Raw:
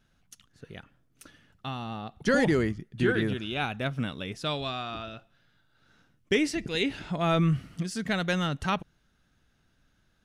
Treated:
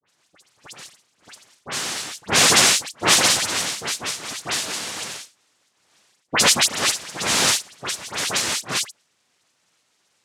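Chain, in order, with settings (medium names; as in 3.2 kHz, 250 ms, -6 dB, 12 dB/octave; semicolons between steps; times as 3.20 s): vocoder on a note that slides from C#4, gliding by +6 st; in parallel at -11.5 dB: sine folder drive 7 dB, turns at -12.5 dBFS; on the sum: treble shelf 3.9 kHz +11 dB; noise-vocoded speech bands 1; phase dispersion highs, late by 71 ms, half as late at 2.3 kHz; trim +3.5 dB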